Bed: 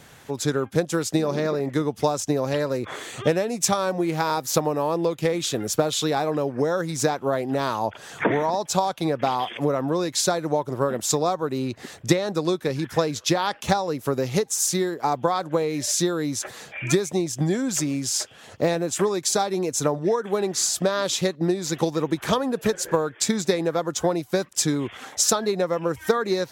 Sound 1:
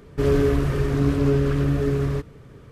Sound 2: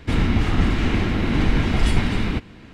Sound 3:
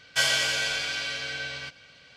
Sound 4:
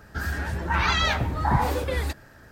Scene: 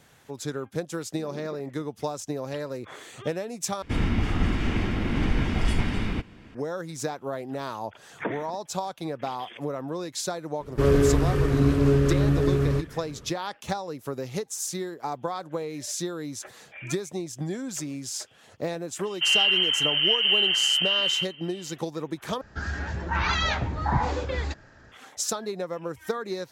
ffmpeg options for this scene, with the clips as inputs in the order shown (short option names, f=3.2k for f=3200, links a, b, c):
-filter_complex "[1:a]asplit=2[a][b];[0:a]volume=-8.5dB[c];[2:a]bandreject=f=4k:w=11[d];[b]lowpass=f=2.7k:t=q:w=0.5098,lowpass=f=2.7k:t=q:w=0.6013,lowpass=f=2.7k:t=q:w=0.9,lowpass=f=2.7k:t=q:w=2.563,afreqshift=-3200[e];[4:a]aresample=16000,aresample=44100[f];[c]asplit=3[g][h][i];[g]atrim=end=3.824[j];[d]atrim=end=2.73,asetpts=PTS-STARTPTS,volume=-5.5dB[k];[h]atrim=start=6.546:end=22.414[l];[f]atrim=end=2.51,asetpts=PTS-STARTPTS,volume=-2.5dB[m];[i]atrim=start=24.916[n];[a]atrim=end=2.71,asetpts=PTS-STARTPTS,volume=-0.5dB,afade=t=in:d=0.004:c=hsin,afade=t=out:st=2.706:d=0.004:c=hsin,adelay=10600[o];[e]atrim=end=2.71,asetpts=PTS-STARTPTS,volume=-3dB,afade=t=in:d=0.004:c=hsin,afade=t=out:st=2.706:d=0.004:c=hsin,adelay=19030[p];[j][k]acrossfade=d=0.004:c1=hsin:c2=hsin[q];[q][l]acrossfade=d=0.004:c1=hsin:c2=hsin[r];[r][m]acrossfade=d=0.004:c1=hsin:c2=hsin[s];[s][n]acrossfade=d=0.004:c1=hsin:c2=hsin[t];[t][o][p]amix=inputs=3:normalize=0"